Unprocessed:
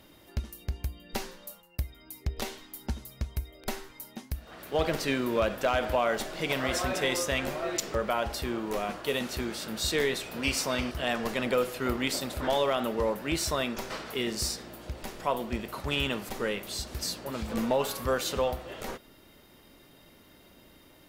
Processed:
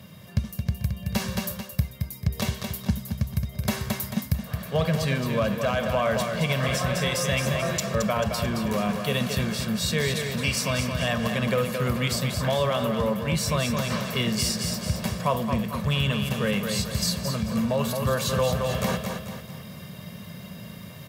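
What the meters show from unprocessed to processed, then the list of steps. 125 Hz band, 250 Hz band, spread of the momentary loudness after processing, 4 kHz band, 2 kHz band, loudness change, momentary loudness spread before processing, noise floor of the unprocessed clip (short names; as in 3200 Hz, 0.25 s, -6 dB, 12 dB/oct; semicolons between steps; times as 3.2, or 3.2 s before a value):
+13.0 dB, +7.0 dB, 7 LU, +4.5 dB, +3.5 dB, +5.0 dB, 12 LU, -57 dBFS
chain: resonant low shelf 250 Hz +8.5 dB, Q 3; on a send: feedback echo 0.22 s, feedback 42%, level -7 dB; on the sum: vocal rider 0.5 s; HPF 94 Hz 24 dB/oct; comb 1.8 ms, depth 48%; in parallel at +2 dB: limiter -18 dBFS, peak gain reduction 8 dB; on the sum: gain -4 dB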